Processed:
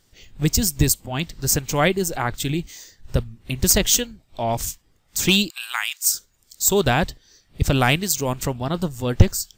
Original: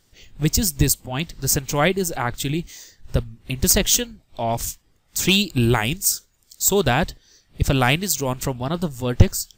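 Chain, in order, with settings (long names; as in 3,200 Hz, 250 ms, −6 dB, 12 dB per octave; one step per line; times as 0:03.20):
0:05.50–0:06.15: inverse Chebyshev high-pass filter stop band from 320 Hz, stop band 60 dB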